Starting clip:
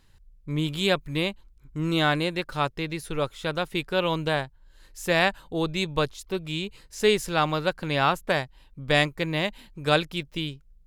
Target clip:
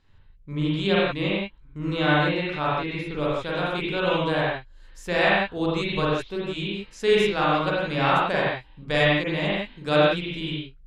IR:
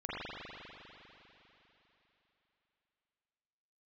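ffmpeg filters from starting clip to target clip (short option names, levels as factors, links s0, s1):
-filter_complex "[0:a]asetnsamples=n=441:p=0,asendcmd='3.14 lowpass f 7900',lowpass=4700[s0];[1:a]atrim=start_sample=2205,afade=t=out:st=0.24:d=0.01,atrim=end_sample=11025[s1];[s0][s1]afir=irnorm=-1:irlink=0"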